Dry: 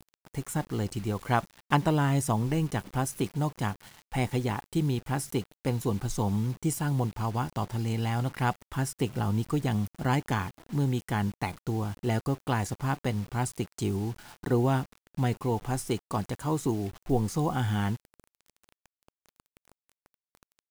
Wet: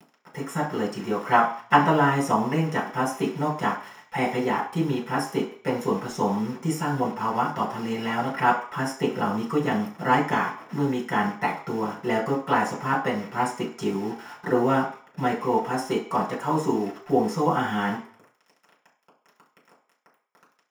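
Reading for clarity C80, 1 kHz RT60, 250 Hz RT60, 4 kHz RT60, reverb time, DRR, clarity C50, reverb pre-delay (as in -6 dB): 12.0 dB, 0.50 s, 0.35 s, 0.55 s, 0.45 s, -5.0 dB, 8.0 dB, 3 ms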